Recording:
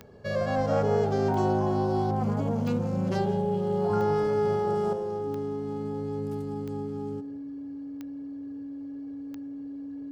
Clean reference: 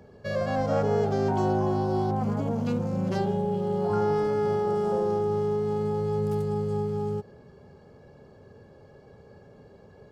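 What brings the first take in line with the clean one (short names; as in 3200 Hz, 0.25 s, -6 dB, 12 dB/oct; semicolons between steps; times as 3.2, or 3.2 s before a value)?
de-click; notch 280 Hz, Q 30; inverse comb 0.171 s -18 dB; gain correction +6.5 dB, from 4.93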